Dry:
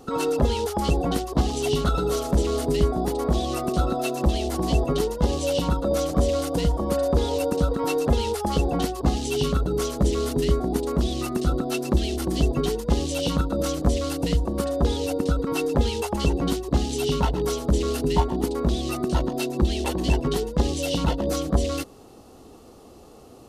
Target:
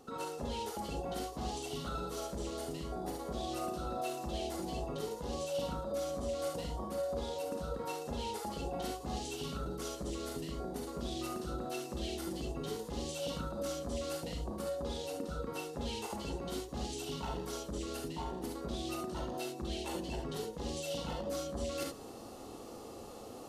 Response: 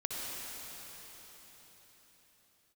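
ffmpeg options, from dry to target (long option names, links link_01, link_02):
-filter_complex "[0:a]lowshelf=frequency=170:gain=-7.5,areverse,acompressor=threshold=-37dB:ratio=8,areverse[link_01];[1:a]atrim=start_sample=2205,afade=type=out:start_time=0.2:duration=0.01,atrim=end_sample=9261,asetrate=79380,aresample=44100[link_02];[link_01][link_02]afir=irnorm=-1:irlink=0,volume=6dB"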